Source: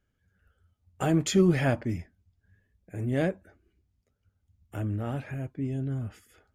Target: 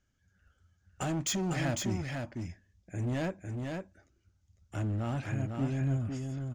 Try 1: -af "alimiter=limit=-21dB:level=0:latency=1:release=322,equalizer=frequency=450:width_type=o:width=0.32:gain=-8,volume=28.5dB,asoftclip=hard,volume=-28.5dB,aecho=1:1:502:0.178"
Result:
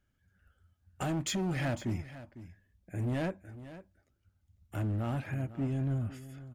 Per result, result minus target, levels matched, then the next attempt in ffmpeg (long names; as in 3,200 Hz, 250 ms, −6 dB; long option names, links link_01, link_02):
echo-to-direct −10.5 dB; 8,000 Hz band −5.0 dB
-af "alimiter=limit=-21dB:level=0:latency=1:release=322,equalizer=frequency=450:width_type=o:width=0.32:gain=-8,volume=28.5dB,asoftclip=hard,volume=-28.5dB,aecho=1:1:502:0.596"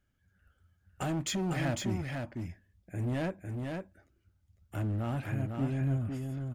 8,000 Hz band −4.0 dB
-af "alimiter=limit=-21dB:level=0:latency=1:release=322,lowpass=frequency=6400:width_type=q:width=2.9,equalizer=frequency=450:width_type=o:width=0.32:gain=-8,volume=28.5dB,asoftclip=hard,volume=-28.5dB,aecho=1:1:502:0.596"